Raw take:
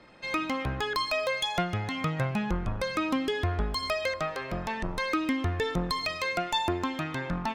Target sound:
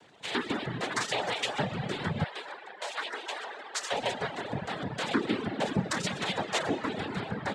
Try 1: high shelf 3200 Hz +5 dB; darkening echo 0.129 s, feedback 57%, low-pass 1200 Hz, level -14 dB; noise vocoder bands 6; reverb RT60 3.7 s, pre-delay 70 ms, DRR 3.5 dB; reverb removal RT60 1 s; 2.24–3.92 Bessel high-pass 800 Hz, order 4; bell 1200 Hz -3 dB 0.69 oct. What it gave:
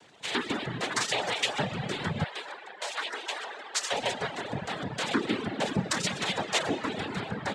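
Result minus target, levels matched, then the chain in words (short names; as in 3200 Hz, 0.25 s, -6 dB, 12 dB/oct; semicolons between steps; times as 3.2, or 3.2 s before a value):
8000 Hz band +3.5 dB
high shelf 3200 Hz -2.5 dB; darkening echo 0.129 s, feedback 57%, low-pass 1200 Hz, level -14 dB; noise vocoder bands 6; reverb RT60 3.7 s, pre-delay 70 ms, DRR 3.5 dB; reverb removal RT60 1 s; 2.24–3.92 Bessel high-pass 800 Hz, order 4; bell 1200 Hz -3 dB 0.69 oct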